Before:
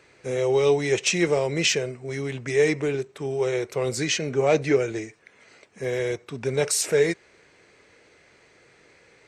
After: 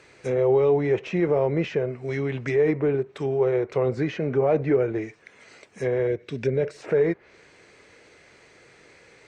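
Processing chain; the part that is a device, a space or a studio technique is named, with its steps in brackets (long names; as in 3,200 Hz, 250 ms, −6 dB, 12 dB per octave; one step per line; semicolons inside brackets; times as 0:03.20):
clipper into limiter (hard clipping −11.5 dBFS, distortion −33 dB; brickwall limiter −15.5 dBFS, peak gain reduction 4 dB)
treble cut that deepens with the level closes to 1,300 Hz, closed at −23.5 dBFS
0:06.07–0:06.77: flat-topped bell 990 Hz −10.5 dB 1.1 octaves
level +3 dB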